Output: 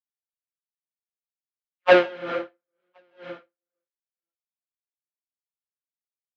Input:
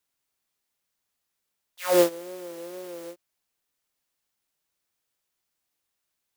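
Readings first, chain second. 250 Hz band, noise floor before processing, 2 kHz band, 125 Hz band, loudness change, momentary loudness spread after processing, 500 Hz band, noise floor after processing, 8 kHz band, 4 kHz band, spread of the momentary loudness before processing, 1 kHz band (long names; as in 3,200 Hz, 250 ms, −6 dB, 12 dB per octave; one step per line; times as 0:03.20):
0.0 dB, −81 dBFS, +12.5 dB, +1.0 dB, +2.0 dB, 15 LU, +3.5 dB, below −85 dBFS, below −20 dB, +4.0 dB, 17 LU, +8.0 dB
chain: each half-wave held at its own peak
low-pass filter 3,300 Hz 24 dB per octave
noise gate −26 dBFS, range −52 dB
high-pass filter 120 Hz
low-shelf EQ 230 Hz −4.5 dB
in parallel at −1 dB: downward compressor, threshold −22 dBFS, peak gain reduction 11.5 dB
on the sum: single-tap delay 1,073 ms −23.5 dB
dense smooth reverb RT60 0.53 s, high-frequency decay 0.85×, pre-delay 120 ms, DRR −4.5 dB
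tremolo with a sine in dB 2.1 Hz, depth 34 dB
level +3 dB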